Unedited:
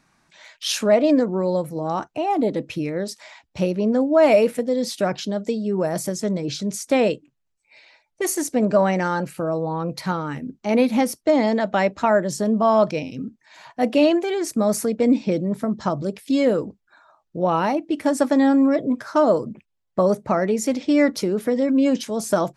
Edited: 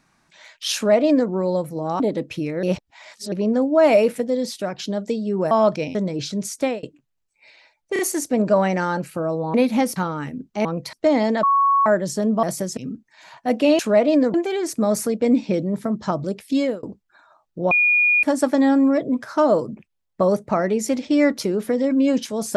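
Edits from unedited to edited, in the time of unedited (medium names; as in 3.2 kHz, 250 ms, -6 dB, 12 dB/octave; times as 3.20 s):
0.75–1.30 s: copy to 14.12 s
2.00–2.39 s: delete
3.02–3.71 s: reverse
4.73–5.17 s: fade out, to -7.5 dB
5.90–6.24 s: swap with 12.66–13.10 s
6.87–7.12 s: fade out
8.22 s: stutter 0.03 s, 3 plays
9.77–10.05 s: swap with 10.74–11.16 s
11.66–12.09 s: bleep 1.11 kHz -13.5 dBFS
16.36–16.61 s: fade out
17.49–18.01 s: bleep 2.44 kHz -13.5 dBFS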